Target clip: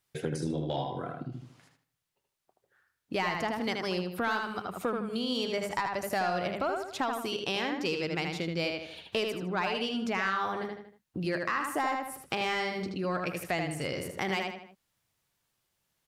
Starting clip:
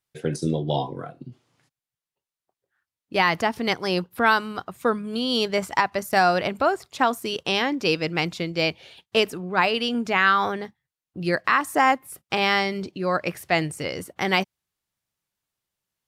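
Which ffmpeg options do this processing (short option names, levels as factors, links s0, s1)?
-filter_complex "[0:a]asoftclip=type=tanh:threshold=0.299,asplit=2[s0][s1];[s1]adelay=78,lowpass=f=4500:p=1,volume=0.631,asplit=2[s2][s3];[s3]adelay=78,lowpass=f=4500:p=1,volume=0.33,asplit=2[s4][s5];[s5]adelay=78,lowpass=f=4500:p=1,volume=0.33,asplit=2[s6][s7];[s7]adelay=78,lowpass=f=4500:p=1,volume=0.33[s8];[s2][s4][s6][s8]amix=inputs=4:normalize=0[s9];[s0][s9]amix=inputs=2:normalize=0,acompressor=threshold=0.00891:ratio=2.5,volume=1.78"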